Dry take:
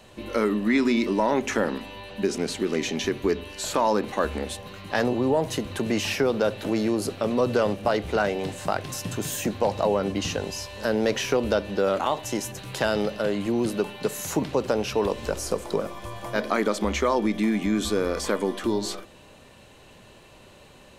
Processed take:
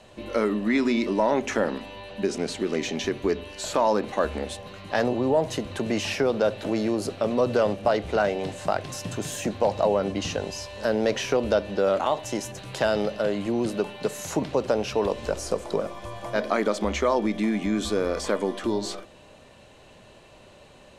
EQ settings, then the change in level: low-pass 9.5 kHz 12 dB/octave; peaking EQ 630 Hz +4.5 dB 0.55 oct; -1.5 dB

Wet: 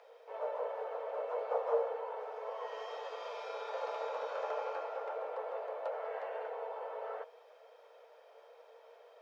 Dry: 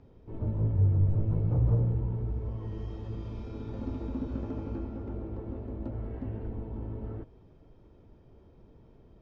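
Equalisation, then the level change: dynamic bell 1 kHz, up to +4 dB, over -55 dBFS, Q 1.4; rippled Chebyshev high-pass 460 Hz, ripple 3 dB; +11.0 dB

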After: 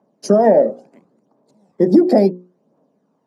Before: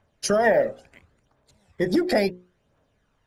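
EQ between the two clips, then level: steep high-pass 190 Hz 36 dB/octave; tilt EQ -3.5 dB/octave; high-order bell 2.2 kHz -11.5 dB; +5.0 dB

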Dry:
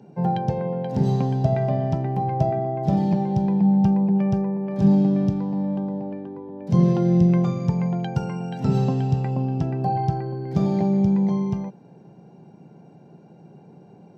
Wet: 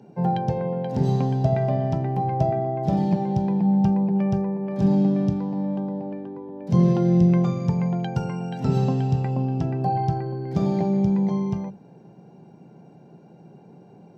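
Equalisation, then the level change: hum notches 50/100/150/200 Hz; 0.0 dB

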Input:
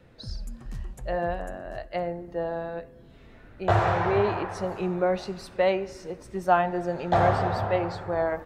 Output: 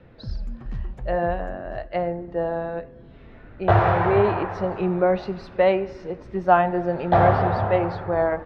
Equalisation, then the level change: distance through air 260 m; +5.5 dB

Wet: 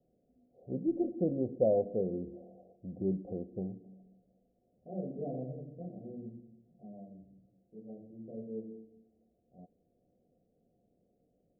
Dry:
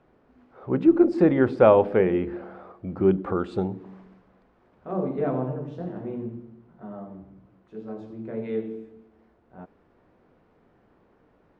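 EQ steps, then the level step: rippled Chebyshev low-pass 740 Hz, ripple 6 dB; -9.0 dB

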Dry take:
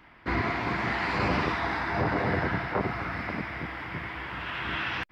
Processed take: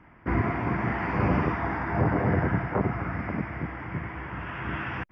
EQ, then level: boxcar filter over 11 samples; peaking EQ 120 Hz +6.5 dB 2.7 oct; 0.0 dB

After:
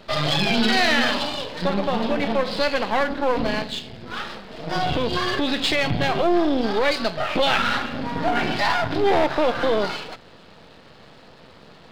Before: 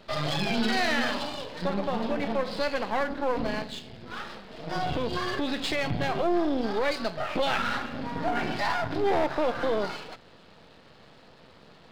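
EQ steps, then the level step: dynamic bell 3.3 kHz, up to +4 dB, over -45 dBFS, Q 1.2; +6.0 dB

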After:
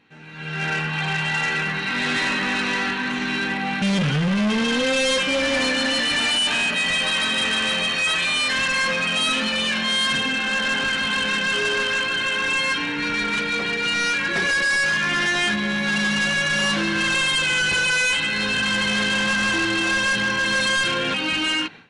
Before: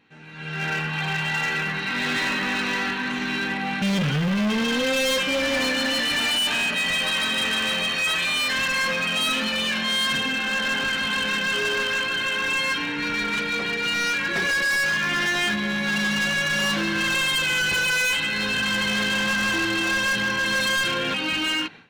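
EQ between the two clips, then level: brick-wall FIR low-pass 11 kHz; +2.0 dB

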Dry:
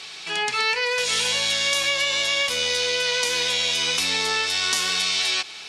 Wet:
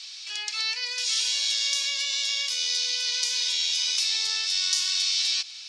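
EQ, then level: band-pass filter 5.2 kHz, Q 2; +2.0 dB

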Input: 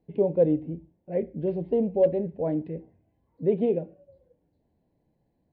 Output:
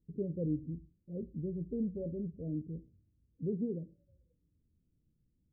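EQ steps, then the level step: Gaussian low-pass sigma 25 samples; bass shelf 95 Hz +10.5 dB; -6.0 dB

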